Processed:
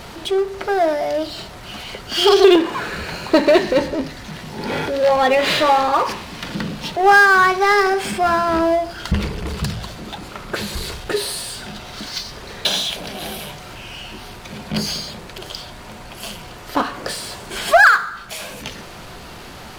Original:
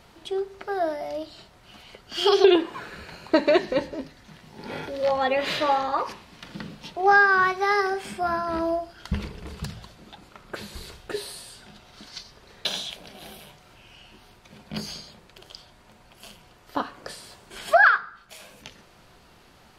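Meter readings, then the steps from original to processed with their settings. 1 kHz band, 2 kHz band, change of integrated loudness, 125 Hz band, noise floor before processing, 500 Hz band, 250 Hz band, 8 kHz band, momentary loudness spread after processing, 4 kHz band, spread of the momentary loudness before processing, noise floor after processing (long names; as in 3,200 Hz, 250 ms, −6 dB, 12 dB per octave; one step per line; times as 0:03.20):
+7.5 dB, +7.0 dB, +6.0 dB, +11.0 dB, −54 dBFS, +7.5 dB, +8.0 dB, +13.0 dB, 21 LU, +9.5 dB, 23 LU, −37 dBFS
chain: power curve on the samples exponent 0.7
level +3.5 dB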